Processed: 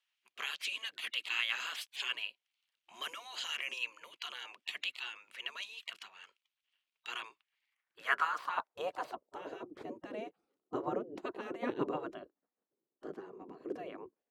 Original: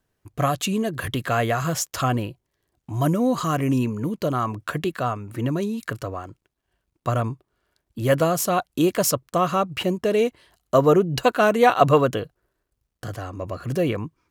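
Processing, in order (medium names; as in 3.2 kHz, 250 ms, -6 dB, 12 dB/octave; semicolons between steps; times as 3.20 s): spectral gate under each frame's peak -15 dB weak; band-pass sweep 2.9 kHz -> 360 Hz, 7.32–9.71 s; trim +4 dB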